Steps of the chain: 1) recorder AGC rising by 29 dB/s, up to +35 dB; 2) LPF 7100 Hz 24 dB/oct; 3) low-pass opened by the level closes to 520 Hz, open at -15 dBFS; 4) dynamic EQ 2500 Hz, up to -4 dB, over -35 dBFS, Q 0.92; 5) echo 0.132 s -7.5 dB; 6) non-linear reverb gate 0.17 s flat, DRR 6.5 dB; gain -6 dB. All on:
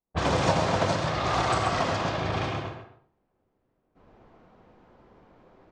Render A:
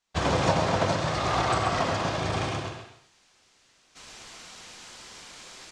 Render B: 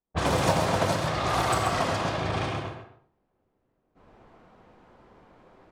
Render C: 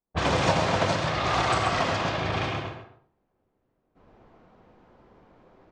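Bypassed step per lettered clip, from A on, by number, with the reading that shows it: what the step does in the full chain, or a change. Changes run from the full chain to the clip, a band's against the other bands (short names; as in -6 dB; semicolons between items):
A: 3, 8 kHz band +2.0 dB; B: 2, 8 kHz band +3.0 dB; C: 4, 2 kHz band +2.5 dB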